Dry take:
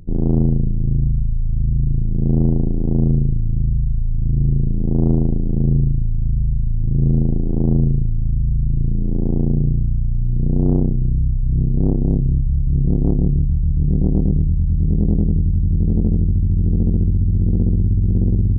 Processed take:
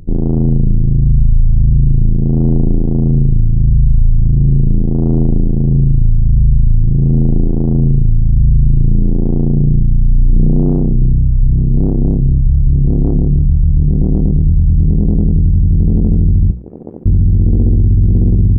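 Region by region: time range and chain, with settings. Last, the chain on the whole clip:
16.51–17.06 s: high-pass 630 Hz + AM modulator 77 Hz, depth 90%
whole clip: hum notches 60/120/180 Hz; level rider; peak limiter -10 dBFS; trim +6.5 dB

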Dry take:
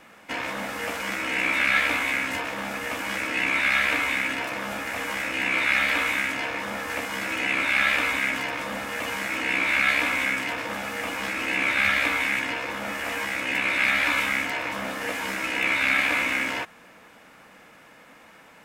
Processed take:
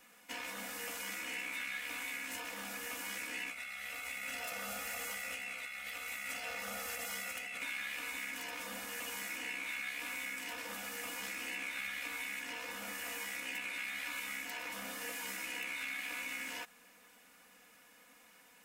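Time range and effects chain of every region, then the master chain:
3.50–7.62 s: comb 1.5 ms, depth 73% + compressor with a negative ratio -29 dBFS
whole clip: pre-emphasis filter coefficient 0.8; comb 4.1 ms, depth 60%; compression, threshold -35 dBFS; trim -3 dB

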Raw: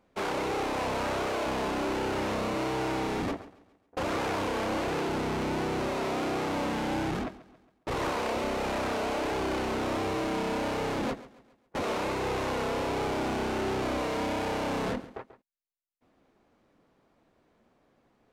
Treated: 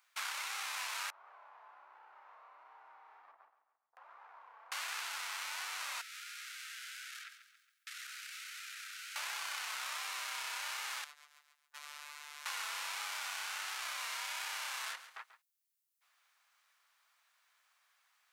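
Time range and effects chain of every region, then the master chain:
1.10–4.72 s: Chebyshev band-pass 270–900 Hz + compression 10:1, threshold -41 dBFS
6.01–9.16 s: steep high-pass 1.3 kHz 96 dB/octave + compression 12:1, threshold -47 dBFS
11.04–12.46 s: robot voice 147 Hz + compression 2:1, threshold -49 dBFS
whole clip: high-pass 1.2 kHz 24 dB/octave; treble shelf 5.4 kHz +12 dB; compression 2:1, threshold -42 dBFS; trim +1 dB

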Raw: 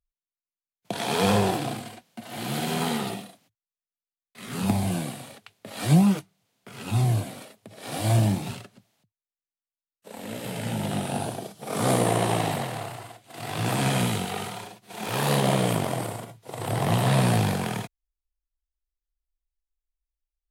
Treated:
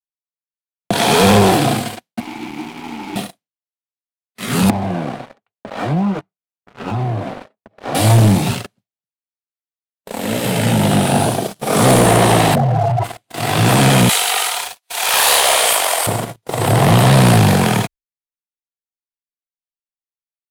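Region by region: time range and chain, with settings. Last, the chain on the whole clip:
2.20–3.16 s: one-bit comparator + vowel filter u + treble shelf 9.2 kHz +7.5 dB
4.70–7.95 s: compression 2.5:1, threshold -30 dBFS + band-pass filter 1 kHz, Q 0.76 + tilt EQ -3 dB/octave
12.55–13.04 s: spectral contrast enhancement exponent 2.4 + level flattener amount 70%
14.09–16.07 s: Bessel high-pass 840 Hz, order 6 + treble shelf 3 kHz +6.5 dB
whole clip: expander -42 dBFS; waveshaping leveller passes 3; trim +4.5 dB

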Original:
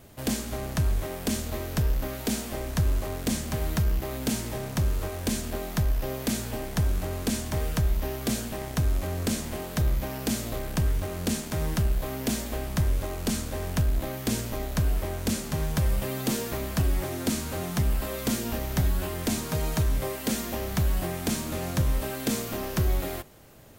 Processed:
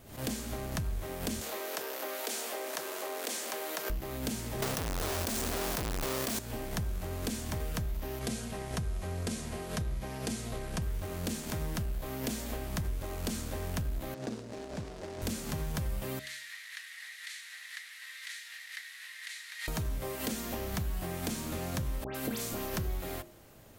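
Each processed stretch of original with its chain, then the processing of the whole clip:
1.41–3.90 s: high-pass 390 Hz 24 dB/octave + level flattener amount 50%
4.62–6.39 s: square wave that keeps the level + tone controls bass -8 dB, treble +6 dB + level flattener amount 100%
8.19–10.82 s: steep low-pass 12 kHz 96 dB/octave + comb of notches 290 Hz
14.14–15.22 s: median filter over 41 samples + band-pass 110–6700 Hz + tone controls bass -8 dB, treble +12 dB
16.19–19.68 s: one-bit delta coder 64 kbps, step -30 dBFS + ladder high-pass 1.8 kHz, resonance 80% + peaking EQ 3.9 kHz +7.5 dB 0.54 oct
22.04–22.77 s: peaking EQ 12 kHz +3.5 dB 0.23 oct + phase dispersion highs, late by 108 ms, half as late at 2 kHz
whole clip: compression 4:1, threshold -28 dBFS; de-hum 69.53 Hz, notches 9; swell ahead of each attack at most 99 dB/s; trim -3.5 dB

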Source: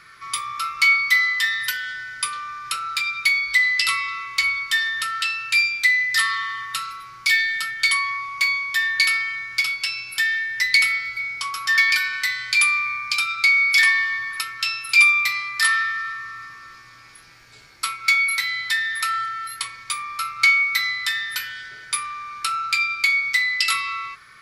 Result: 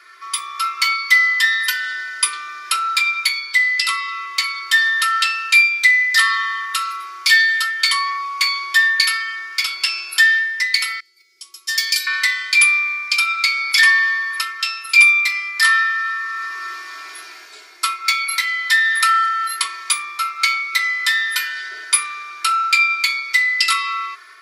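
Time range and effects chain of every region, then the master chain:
11.00–12.07 s: high-pass 260 Hz + gate -25 dBFS, range -15 dB + FFT filter 360 Hz 0 dB, 1 kHz -25 dB, 3.2 kHz -7 dB, 6.8 kHz +3 dB
whole clip: steep high-pass 350 Hz 36 dB/octave; comb 2.9 ms, depth 92%; level rider; trim -1 dB

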